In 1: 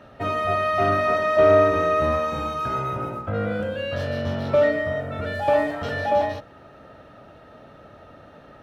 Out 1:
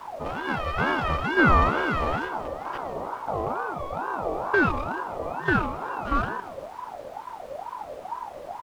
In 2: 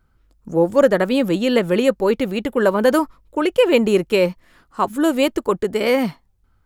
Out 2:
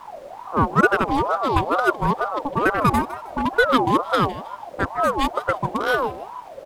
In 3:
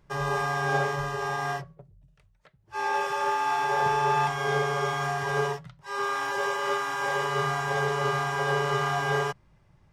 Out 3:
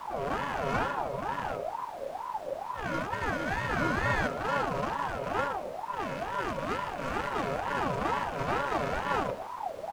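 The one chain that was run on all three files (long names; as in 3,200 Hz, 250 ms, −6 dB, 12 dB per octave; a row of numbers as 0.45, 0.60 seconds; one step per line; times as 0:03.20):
adaptive Wiener filter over 41 samples
parametric band 1,300 Hz −6 dB 0.5 octaves
background noise brown −35 dBFS
on a send: echo with shifted repeats 157 ms, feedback 36%, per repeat −66 Hz, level −15 dB
on the sum: ring modulator whose carrier an LFO sweeps 770 Hz, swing 30%, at 2.2 Hz
level +1 dB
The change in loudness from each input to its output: −4.0, −2.5, −5.0 LU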